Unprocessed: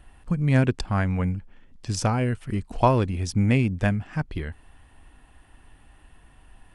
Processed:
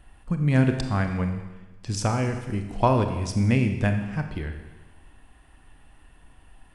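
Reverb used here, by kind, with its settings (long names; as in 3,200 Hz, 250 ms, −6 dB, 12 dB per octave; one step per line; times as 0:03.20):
four-comb reverb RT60 1.2 s, combs from 27 ms, DRR 6 dB
level −1.5 dB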